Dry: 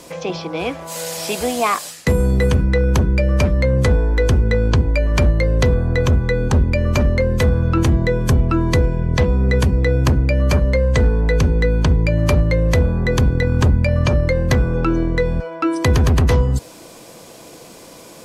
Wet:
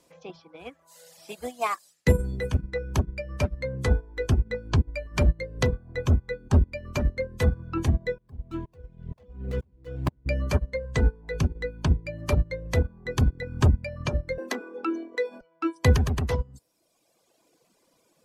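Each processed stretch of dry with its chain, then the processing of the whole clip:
8.18–10.26 s: median filter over 25 samples + tremolo saw up 2.1 Hz, depth 90%
14.38–15.41 s: steep high-pass 230 Hz 72 dB/octave + level flattener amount 70%
whole clip: reverb removal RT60 1.8 s; upward expansion 2.5:1, over -26 dBFS; trim -1.5 dB

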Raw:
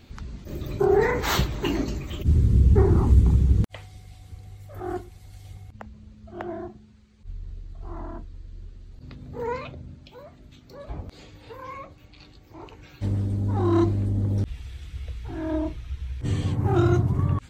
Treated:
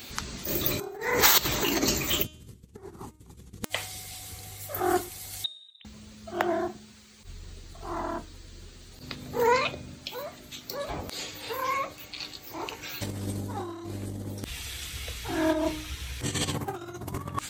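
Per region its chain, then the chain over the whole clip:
5.44–5.85 s: inverted gate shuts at -35 dBFS, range -28 dB + frequency inversion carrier 3.8 kHz
whole clip: compressor with a negative ratio -27 dBFS, ratio -0.5; RIAA curve recording; de-hum 308.2 Hz, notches 32; trim +4 dB

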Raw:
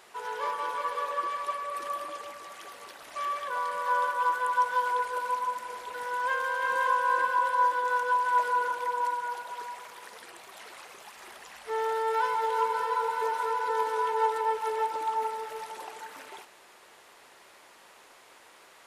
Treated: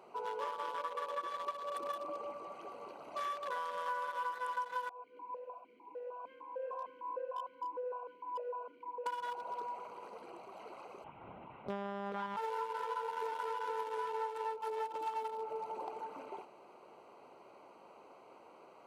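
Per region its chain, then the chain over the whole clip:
4.89–9.06 s: band-stop 1.3 kHz, Q 14 + stepped vowel filter 6.6 Hz
11.04–12.37 s: monotone LPC vocoder at 8 kHz 200 Hz + distance through air 130 m
whole clip: local Wiener filter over 25 samples; high-pass 130 Hz 12 dB/octave; compression 6:1, threshold -40 dBFS; trim +3.5 dB

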